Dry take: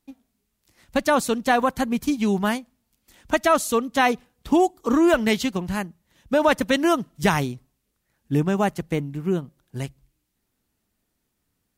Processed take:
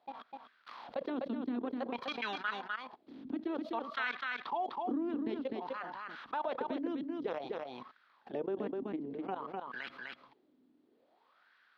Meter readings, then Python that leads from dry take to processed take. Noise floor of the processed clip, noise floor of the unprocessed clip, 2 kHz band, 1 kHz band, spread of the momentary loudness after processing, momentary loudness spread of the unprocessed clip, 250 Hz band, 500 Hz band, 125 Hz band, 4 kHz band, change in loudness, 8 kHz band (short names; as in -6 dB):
-71 dBFS, -76 dBFS, -13.5 dB, -14.5 dB, 13 LU, 11 LU, -15.5 dB, -16.0 dB, -27.5 dB, -15.5 dB, -16.0 dB, under -35 dB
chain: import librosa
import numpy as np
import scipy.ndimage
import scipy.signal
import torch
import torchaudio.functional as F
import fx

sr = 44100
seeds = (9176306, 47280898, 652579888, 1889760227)

p1 = fx.spec_clip(x, sr, under_db=18)
p2 = fx.highpass(p1, sr, hz=48.0, slope=6)
p3 = fx.level_steps(p2, sr, step_db=22)
p4 = fx.filter_lfo_bandpass(p3, sr, shape='sine', hz=0.54, low_hz=270.0, high_hz=1600.0, q=6.5)
p5 = fx.high_shelf_res(p4, sr, hz=5700.0, db=-11.5, q=3.0)
p6 = fx.small_body(p5, sr, hz=(240.0, 3300.0), ring_ms=45, db=8)
p7 = p6 + fx.echo_single(p6, sr, ms=252, db=-9.0, dry=0)
p8 = fx.env_flatten(p7, sr, amount_pct=70)
y = F.gain(torch.from_numpy(p8), -6.5).numpy()